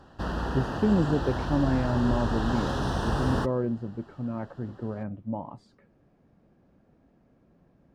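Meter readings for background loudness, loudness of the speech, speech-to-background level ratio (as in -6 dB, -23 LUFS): -31.0 LUFS, -29.5 LUFS, 1.5 dB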